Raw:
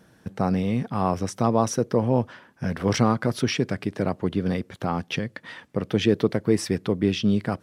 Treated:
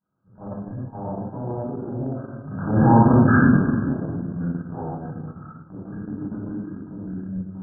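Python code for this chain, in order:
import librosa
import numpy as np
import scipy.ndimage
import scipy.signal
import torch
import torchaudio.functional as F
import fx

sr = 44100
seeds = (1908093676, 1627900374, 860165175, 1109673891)

p1 = fx.doppler_pass(x, sr, speed_mps=22, closest_m=3.4, pass_at_s=3.17)
p2 = fx.formant_shift(p1, sr, semitones=-5)
p3 = fx.level_steps(p2, sr, step_db=16)
p4 = fx.low_shelf(p3, sr, hz=95.0, db=-7.5)
p5 = fx.doubler(p4, sr, ms=27.0, db=-9)
p6 = p5 + fx.echo_single(p5, sr, ms=431, db=-21.5, dry=0)
p7 = fx.room_shoebox(p6, sr, seeds[0], volume_m3=890.0, walls='mixed', distance_m=8.3)
p8 = fx.transient(p7, sr, attack_db=-11, sustain_db=-7)
p9 = fx.brickwall_lowpass(p8, sr, high_hz=1700.0)
y = p9 * librosa.db_to_amplitude(8.0)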